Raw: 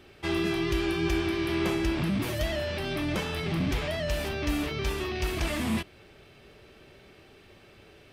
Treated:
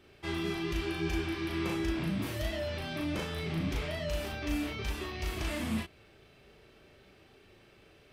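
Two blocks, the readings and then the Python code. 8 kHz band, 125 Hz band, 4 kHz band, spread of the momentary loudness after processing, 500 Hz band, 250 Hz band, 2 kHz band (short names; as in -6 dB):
-5.5 dB, -4.5 dB, -5.5 dB, 4 LU, -6.5 dB, -5.0 dB, -5.5 dB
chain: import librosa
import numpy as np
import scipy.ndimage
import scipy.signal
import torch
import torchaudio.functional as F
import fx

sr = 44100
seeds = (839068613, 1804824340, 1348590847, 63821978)

y = fx.doubler(x, sr, ms=37.0, db=-2)
y = F.gain(torch.from_numpy(y), -7.5).numpy()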